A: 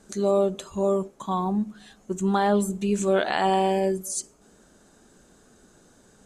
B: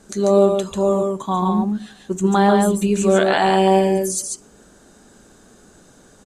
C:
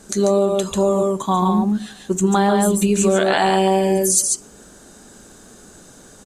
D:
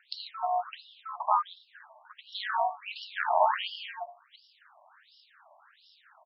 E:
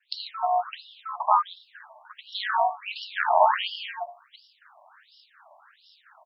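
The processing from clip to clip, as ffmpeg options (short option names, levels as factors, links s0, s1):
-af "aecho=1:1:141:0.668,volume=1.88"
-af "acompressor=threshold=0.158:ratio=6,highshelf=f=5300:g=6.5,volume=1.5"
-af "aeval=exprs='val(0)*sin(2*PI*130*n/s)':c=same,afftfilt=real='re*between(b*sr/1024,790*pow(4000/790,0.5+0.5*sin(2*PI*1.4*pts/sr))/1.41,790*pow(4000/790,0.5+0.5*sin(2*PI*1.4*pts/sr))*1.41)':imag='im*between(b*sr/1024,790*pow(4000/790,0.5+0.5*sin(2*PI*1.4*pts/sr))/1.41,790*pow(4000/790,0.5+0.5*sin(2*PI*1.4*pts/sr))*1.41)':win_size=1024:overlap=0.75"
-af "agate=range=0.0224:threshold=0.00126:ratio=3:detection=peak,volume=1.78"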